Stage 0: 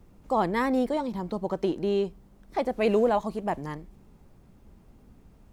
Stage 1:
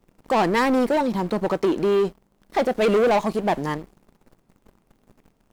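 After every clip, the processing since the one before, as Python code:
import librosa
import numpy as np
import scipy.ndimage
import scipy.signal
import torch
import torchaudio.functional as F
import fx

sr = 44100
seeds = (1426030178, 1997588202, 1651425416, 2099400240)

y = fx.peak_eq(x, sr, hz=61.0, db=-14.0, octaves=1.9)
y = fx.leveller(y, sr, passes=3)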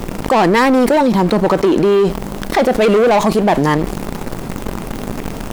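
y = fx.env_flatten(x, sr, amount_pct=70)
y = y * librosa.db_to_amplitude(6.0)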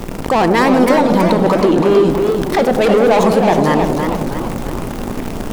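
y = fx.echo_wet_lowpass(x, sr, ms=97, feedback_pct=71, hz=860.0, wet_db=-7.0)
y = fx.echo_warbled(y, sr, ms=321, feedback_pct=49, rate_hz=2.8, cents=164, wet_db=-6)
y = y * librosa.db_to_amplitude(-1.5)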